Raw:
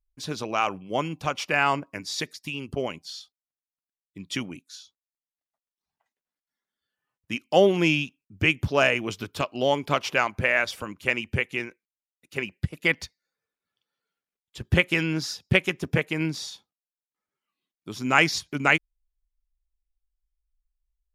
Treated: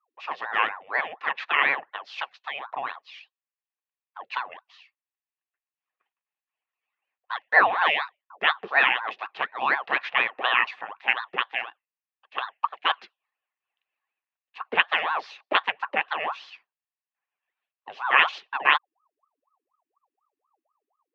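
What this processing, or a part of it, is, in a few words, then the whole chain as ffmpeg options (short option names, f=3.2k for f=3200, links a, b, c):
voice changer toy: -af "aeval=exprs='val(0)*sin(2*PI*770*n/s+770*0.65/4.1*sin(2*PI*4.1*n/s))':c=same,highpass=450,equalizer=f=780:t=q:w=4:g=7,equalizer=f=1.1k:t=q:w=4:g=9,equalizer=f=1.8k:t=q:w=4:g=10,equalizer=f=2.6k:t=q:w=4:g=10,lowpass=f=3.6k:w=0.5412,lowpass=f=3.6k:w=1.3066,volume=-3.5dB"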